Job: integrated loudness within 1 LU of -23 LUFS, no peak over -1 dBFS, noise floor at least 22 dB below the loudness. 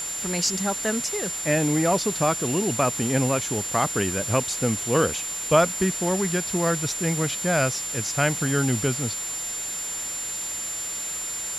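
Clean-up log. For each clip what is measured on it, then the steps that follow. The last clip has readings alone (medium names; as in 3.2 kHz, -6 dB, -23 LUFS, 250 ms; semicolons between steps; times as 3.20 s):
steady tone 7.2 kHz; tone level -29 dBFS; noise floor -31 dBFS; noise floor target -46 dBFS; loudness -24.0 LUFS; peak level -5.5 dBFS; loudness target -23.0 LUFS
-> band-stop 7.2 kHz, Q 30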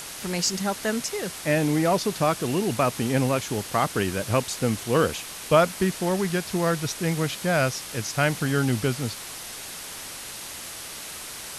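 steady tone not found; noise floor -38 dBFS; noise floor target -48 dBFS
-> noise print and reduce 10 dB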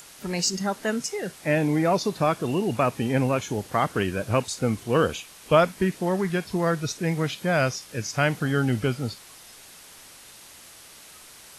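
noise floor -48 dBFS; loudness -25.0 LUFS; peak level -6.0 dBFS; loudness target -23.0 LUFS
-> trim +2 dB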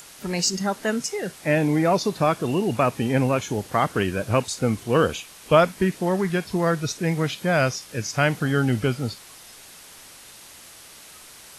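loudness -23.0 LUFS; peak level -4.0 dBFS; noise floor -46 dBFS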